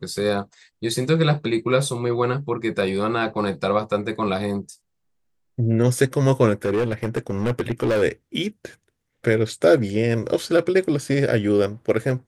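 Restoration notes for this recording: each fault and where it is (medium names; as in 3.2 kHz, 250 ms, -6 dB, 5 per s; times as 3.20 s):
6.65–8.03 s: clipped -17 dBFS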